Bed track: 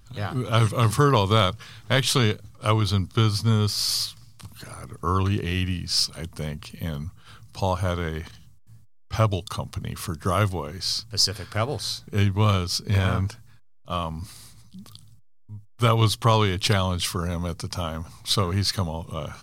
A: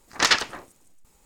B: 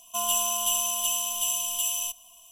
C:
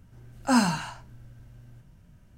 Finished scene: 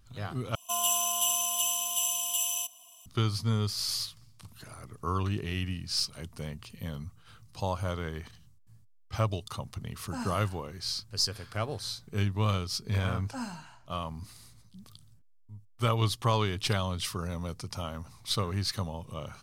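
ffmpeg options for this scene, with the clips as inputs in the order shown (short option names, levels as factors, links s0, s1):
-filter_complex "[3:a]asplit=2[s0][s1];[0:a]volume=0.422[s2];[2:a]highpass=f=210:w=0.5412,highpass=f=210:w=1.3066[s3];[s2]asplit=2[s4][s5];[s4]atrim=end=0.554[s6];[s3]atrim=end=2.51,asetpts=PTS-STARTPTS,volume=0.794[s7];[s5]atrim=start=3.056[s8];[s0]atrim=end=2.37,asetpts=PTS-STARTPTS,volume=0.15,afade=t=in:d=0.004:c=hsin,afade=t=out:st=2.366:d=0.004:c=hsin,adelay=9640[s9];[s1]atrim=end=2.37,asetpts=PTS-STARTPTS,volume=0.15,afade=t=in:d=0.004:c=hsin,afade=t=out:st=2.366:d=0.004:c=hsin,adelay=12850[s10];[s6][s7]acrossfade=d=0.004:c1=hsin:c2=hsin[s11];[s11][s8]acrossfade=d=0.004:c1=hsin:c2=hsin[s12];[s12][s9][s10]amix=inputs=3:normalize=0"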